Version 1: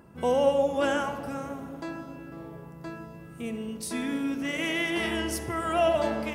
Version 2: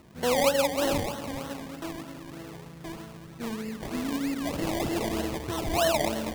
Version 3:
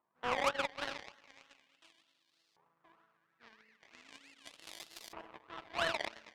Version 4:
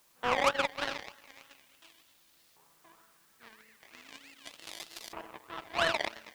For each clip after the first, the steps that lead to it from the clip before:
decimation with a swept rate 26×, swing 60% 3.2 Hz; dynamic EQ 1400 Hz, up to -6 dB, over -42 dBFS, Q 1.9
LFO band-pass saw up 0.39 Hz 980–4700 Hz; added harmonics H 3 -33 dB, 5 -11 dB, 7 -10 dB, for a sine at -18 dBFS
added noise white -72 dBFS; gain +5.5 dB

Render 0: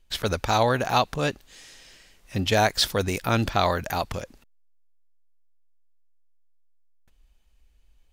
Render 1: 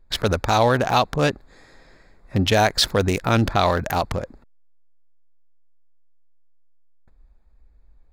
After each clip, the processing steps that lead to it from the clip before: Wiener smoothing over 15 samples; in parallel at +1.5 dB: limiter -17.5 dBFS, peak gain reduction 11 dB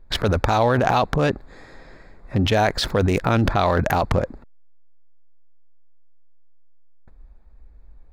in parallel at -1 dB: negative-ratio compressor -24 dBFS, ratio -0.5; on the sum: high shelf 3500 Hz -9.5 dB; gain -1.5 dB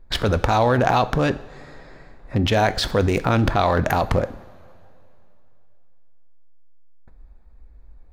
two-slope reverb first 0.51 s, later 2.9 s, from -16 dB, DRR 12 dB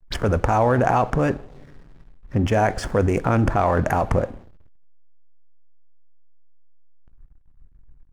envelope phaser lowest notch 450 Hz, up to 3900 Hz, full sweep at -22.5 dBFS; backlash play -39.5 dBFS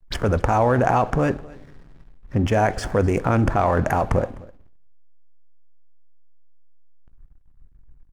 echo 0.255 s -22.5 dB

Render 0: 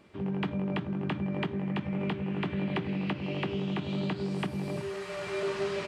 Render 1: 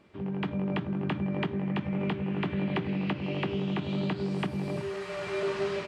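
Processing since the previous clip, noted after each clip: high shelf 7100 Hz -7 dB; AGC gain up to 3 dB; gain -1.5 dB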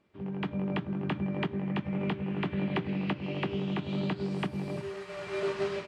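upward expander 1.5:1, over -48 dBFS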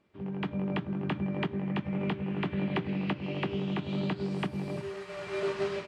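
nothing audible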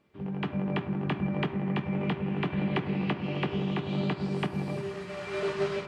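reverb RT60 2.5 s, pre-delay 3 ms, DRR 7.5 dB; gain +1.5 dB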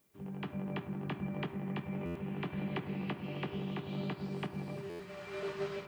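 added noise blue -67 dBFS; stuck buffer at 2.05/4.89, samples 512, times 8; gain -8.5 dB

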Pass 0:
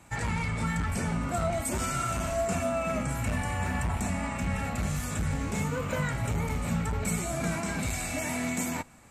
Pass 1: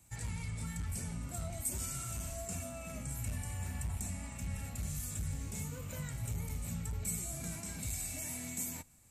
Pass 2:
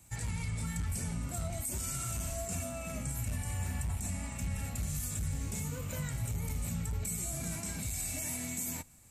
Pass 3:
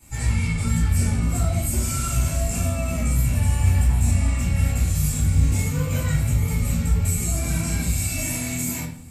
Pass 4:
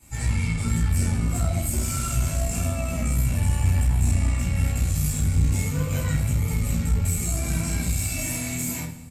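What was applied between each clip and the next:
EQ curve 110 Hz 0 dB, 200 Hz -7 dB, 1300 Hz -13 dB, 13000 Hz +9 dB; gain -7 dB
limiter -31 dBFS, peak gain reduction 8 dB; gain +4.5 dB
reverb RT60 0.50 s, pre-delay 3 ms, DRR -11 dB; gain -3 dB
echo 0.212 s -20 dB; tube stage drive 11 dB, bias 0.45

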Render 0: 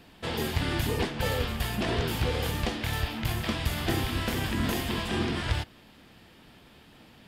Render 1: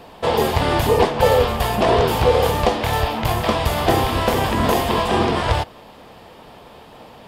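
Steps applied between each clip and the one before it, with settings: band shelf 700 Hz +10.5 dB; gain +7.5 dB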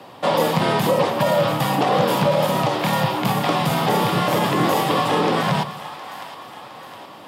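split-band echo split 610 Hz, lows 85 ms, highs 0.713 s, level -14 dB; limiter -9 dBFS, peak gain reduction 7 dB; frequency shift +81 Hz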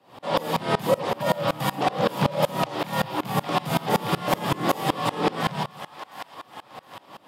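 dB-ramp tremolo swelling 5.3 Hz, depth 25 dB; gain +2 dB

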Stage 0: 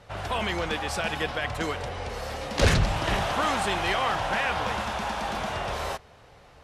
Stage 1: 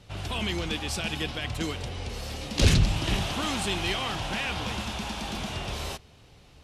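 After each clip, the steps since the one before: band shelf 960 Hz -10 dB 2.4 oct; gain +2 dB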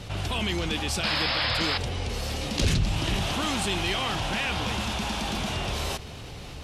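painted sound noise, 1.03–1.78, 490–5300 Hz -28 dBFS; fast leveller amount 50%; gain -5 dB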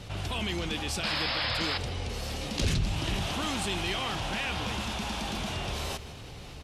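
echo 0.158 s -17 dB; gain -4 dB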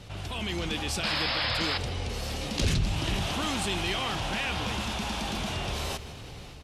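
AGC gain up to 4.5 dB; gain -3 dB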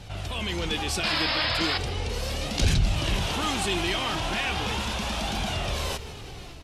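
flange 0.37 Hz, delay 1.2 ms, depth 2.1 ms, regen +57%; gain +7 dB

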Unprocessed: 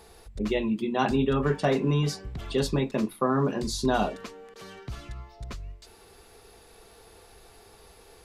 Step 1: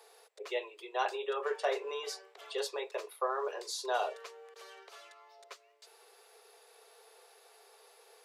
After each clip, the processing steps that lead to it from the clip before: steep high-pass 410 Hz 72 dB/oct; gain -5.5 dB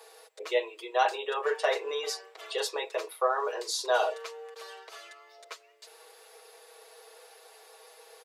comb 6.3 ms, depth 69%; gain +5 dB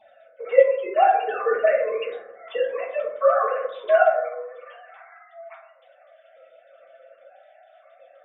sine-wave speech; reverb RT60 0.85 s, pre-delay 5 ms, DRR -8.5 dB; gain -1 dB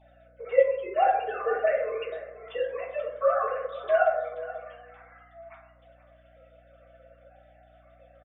hum 60 Hz, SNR 31 dB; echo 0.481 s -15.5 dB; gain -5.5 dB

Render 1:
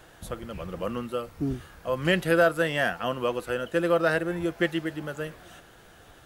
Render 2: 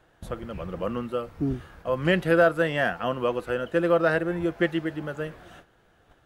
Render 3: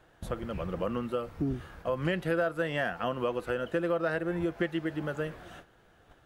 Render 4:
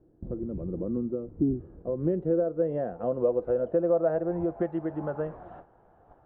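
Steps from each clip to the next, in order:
gate -49 dBFS, range -10 dB; high shelf 4000 Hz -11.5 dB; gain +2 dB
compressor 3:1, threshold -28 dBFS, peak gain reduction 10.5 dB
low-pass sweep 330 Hz -> 850 Hz, 1.29–5.04

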